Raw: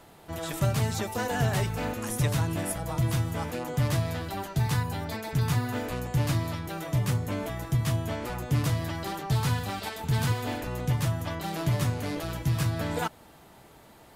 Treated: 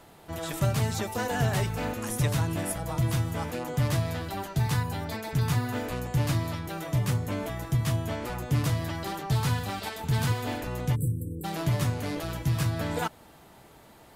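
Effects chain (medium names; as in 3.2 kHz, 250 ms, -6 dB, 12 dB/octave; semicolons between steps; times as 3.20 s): spectral selection erased 10.95–11.44 s, 550–7600 Hz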